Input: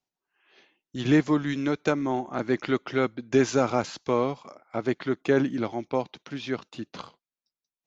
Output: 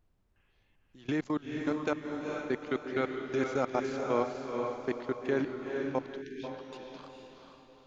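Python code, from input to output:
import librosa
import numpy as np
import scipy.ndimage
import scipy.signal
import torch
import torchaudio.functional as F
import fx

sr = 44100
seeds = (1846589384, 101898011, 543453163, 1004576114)

p1 = fx.level_steps(x, sr, step_db=24)
p2 = fx.bass_treble(p1, sr, bass_db=-5, treble_db=-2)
p3 = p2 + fx.echo_diffused(p2, sr, ms=458, feedback_pct=43, wet_db=-3.0, dry=0)
p4 = fx.dmg_noise_colour(p3, sr, seeds[0], colour='brown', level_db=-66.0)
p5 = fx.spec_erase(p4, sr, start_s=6.22, length_s=0.22, low_hz=460.0, high_hz=1500.0)
y = p5 * librosa.db_to_amplitude(-3.5)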